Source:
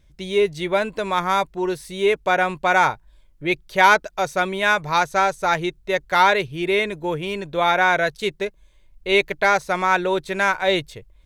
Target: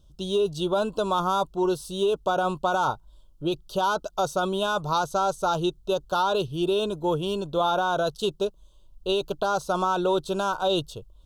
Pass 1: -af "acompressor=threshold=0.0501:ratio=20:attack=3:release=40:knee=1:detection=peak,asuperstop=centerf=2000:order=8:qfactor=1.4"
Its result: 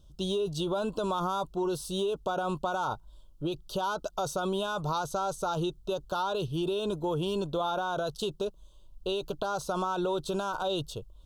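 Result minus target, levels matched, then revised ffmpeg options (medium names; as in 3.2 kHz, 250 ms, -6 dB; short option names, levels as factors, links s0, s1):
compression: peak gain reduction +7 dB
-af "acompressor=threshold=0.119:ratio=20:attack=3:release=40:knee=1:detection=peak,asuperstop=centerf=2000:order=8:qfactor=1.4"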